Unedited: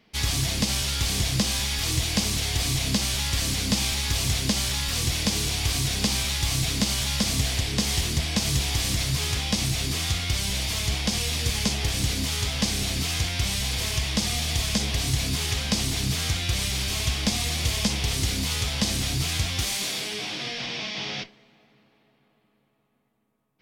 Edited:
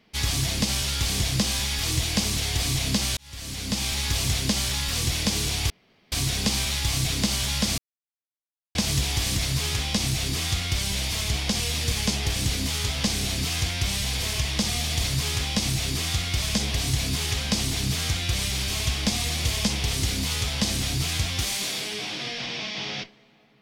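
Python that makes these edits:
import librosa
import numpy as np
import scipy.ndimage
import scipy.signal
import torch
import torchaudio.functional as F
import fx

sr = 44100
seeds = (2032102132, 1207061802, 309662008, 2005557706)

y = fx.edit(x, sr, fx.fade_in_span(start_s=3.17, length_s=0.84),
    fx.insert_room_tone(at_s=5.7, length_s=0.42),
    fx.silence(start_s=7.36, length_s=0.97),
    fx.duplicate(start_s=9.0, length_s=1.38, to_s=14.62), tone=tone)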